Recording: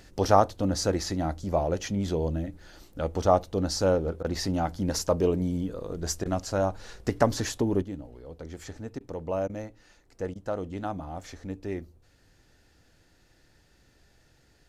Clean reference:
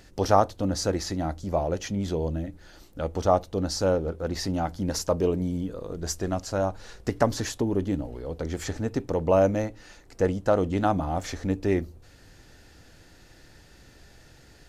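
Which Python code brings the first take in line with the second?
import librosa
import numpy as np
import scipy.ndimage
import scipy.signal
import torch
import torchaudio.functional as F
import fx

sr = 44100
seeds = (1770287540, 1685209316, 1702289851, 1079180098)

y = fx.fix_interpolate(x, sr, at_s=(4.23, 6.24, 8.99, 9.48, 10.34), length_ms=14.0)
y = fx.gain(y, sr, db=fx.steps((0.0, 0.0), (7.82, 9.5)))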